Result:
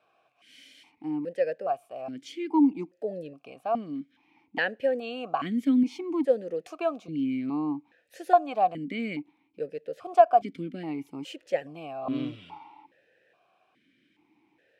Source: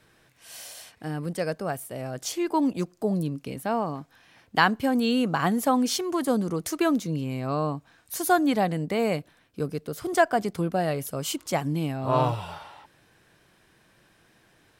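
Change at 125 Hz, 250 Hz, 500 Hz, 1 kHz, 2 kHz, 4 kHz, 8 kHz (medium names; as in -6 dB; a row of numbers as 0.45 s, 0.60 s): -14.5 dB, -2.5 dB, -0.5 dB, -0.5 dB, -6.0 dB, -10.0 dB, under -20 dB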